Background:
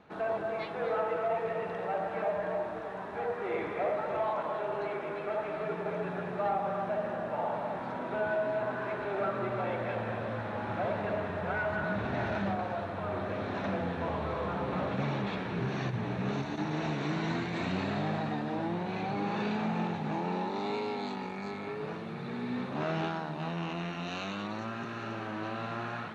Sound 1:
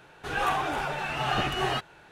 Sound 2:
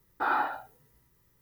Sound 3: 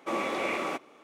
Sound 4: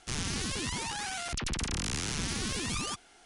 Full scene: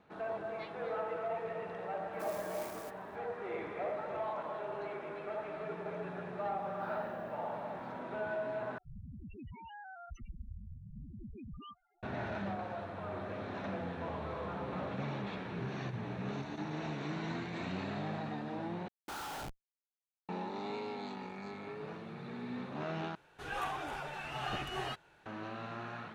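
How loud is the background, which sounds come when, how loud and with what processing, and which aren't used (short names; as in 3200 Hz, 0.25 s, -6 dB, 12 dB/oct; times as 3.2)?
background -6.5 dB
2.13 add 3 -17 dB + clock jitter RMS 0.088 ms
6.6 add 2 -16.5 dB
8.78 replace with 4 -8 dB + loudest bins only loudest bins 4
18.88 replace with 2 -8 dB + Schmitt trigger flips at -40.5 dBFS
23.15 replace with 1 -11 dB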